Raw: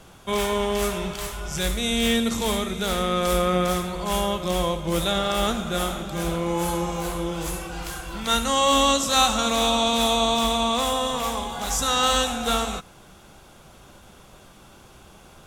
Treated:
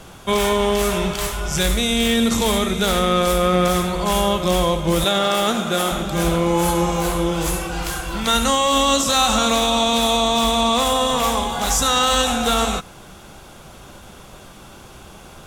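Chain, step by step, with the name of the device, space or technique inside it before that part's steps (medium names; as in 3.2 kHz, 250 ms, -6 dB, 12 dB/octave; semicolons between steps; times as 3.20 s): 5.04–5.92 s: high-pass 180 Hz 12 dB/octave; limiter into clipper (peak limiter -15.5 dBFS, peak gain reduction 6.5 dB; hard clipper -17.5 dBFS, distortion -27 dB); trim +7.5 dB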